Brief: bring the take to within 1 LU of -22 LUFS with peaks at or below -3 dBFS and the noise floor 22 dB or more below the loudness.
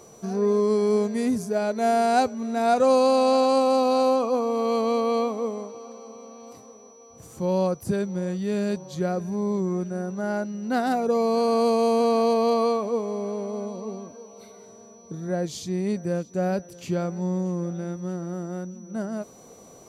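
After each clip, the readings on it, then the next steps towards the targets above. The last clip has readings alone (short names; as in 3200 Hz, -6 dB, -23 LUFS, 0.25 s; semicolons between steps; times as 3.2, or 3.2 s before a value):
steady tone 5900 Hz; tone level -53 dBFS; loudness -24.5 LUFS; peak -10.5 dBFS; loudness target -22.0 LUFS
-> notch 5900 Hz, Q 30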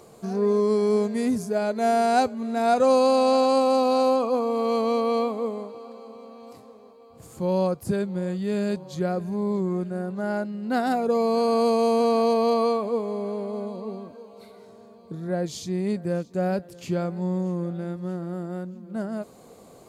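steady tone none; loudness -24.5 LUFS; peak -10.5 dBFS; loudness target -22.0 LUFS
-> gain +2.5 dB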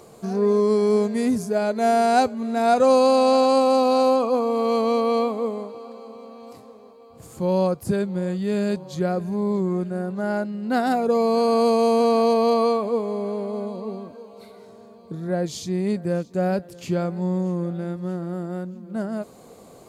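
loudness -22.0 LUFS; peak -8.0 dBFS; noise floor -47 dBFS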